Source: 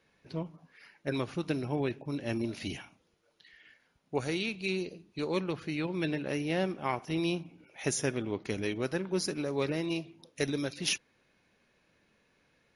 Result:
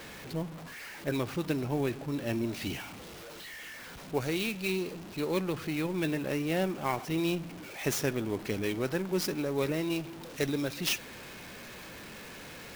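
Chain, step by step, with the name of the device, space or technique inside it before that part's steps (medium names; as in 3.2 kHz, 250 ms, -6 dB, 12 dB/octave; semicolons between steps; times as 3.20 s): early CD player with a faulty converter (jump at every zero crossing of -40 dBFS; sampling jitter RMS 0.021 ms)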